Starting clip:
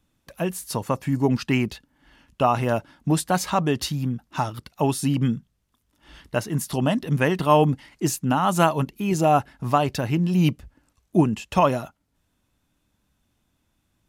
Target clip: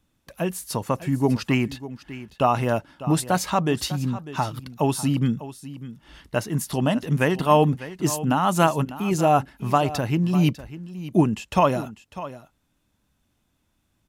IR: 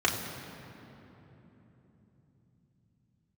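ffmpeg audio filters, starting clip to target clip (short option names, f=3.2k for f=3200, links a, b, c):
-af "aecho=1:1:599:0.178"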